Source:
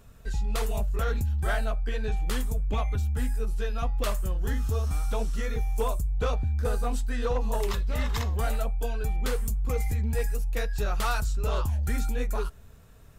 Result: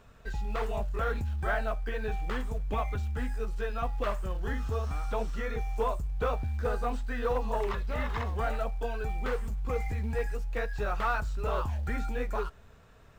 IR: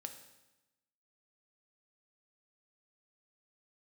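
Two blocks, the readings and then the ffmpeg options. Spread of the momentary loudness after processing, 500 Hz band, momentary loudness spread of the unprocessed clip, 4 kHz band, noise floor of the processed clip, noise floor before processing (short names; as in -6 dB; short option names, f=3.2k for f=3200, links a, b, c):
4 LU, 0.0 dB, 3 LU, -7.5 dB, -54 dBFS, -49 dBFS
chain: -filter_complex "[0:a]asplit=2[a][b];[b]highpass=f=720:p=1,volume=8dB,asoftclip=type=tanh:threshold=-19dB[c];[a][c]amix=inputs=2:normalize=0,lowpass=f=2.2k:p=1,volume=-6dB,acrossover=split=2500[d][e];[e]acompressor=threshold=-52dB:ratio=4:attack=1:release=60[f];[d][f]amix=inputs=2:normalize=0,equalizer=f=11k:t=o:w=0.32:g=-11.5,asplit=2[g][h];[h]acrusher=bits=5:mode=log:mix=0:aa=0.000001,volume=-9dB[i];[g][i]amix=inputs=2:normalize=0,volume=-2.5dB"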